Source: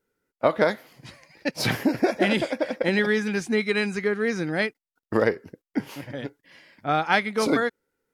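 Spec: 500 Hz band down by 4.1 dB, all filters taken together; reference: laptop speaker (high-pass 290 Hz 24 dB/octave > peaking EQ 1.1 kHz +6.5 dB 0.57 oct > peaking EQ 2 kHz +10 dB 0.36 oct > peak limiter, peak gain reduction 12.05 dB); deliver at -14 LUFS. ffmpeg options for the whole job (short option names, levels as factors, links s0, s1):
-af "highpass=f=290:w=0.5412,highpass=f=290:w=1.3066,equalizer=f=500:t=o:g=-5.5,equalizer=f=1100:t=o:w=0.57:g=6.5,equalizer=f=2000:t=o:w=0.36:g=10,volume=4.22,alimiter=limit=0.794:level=0:latency=1"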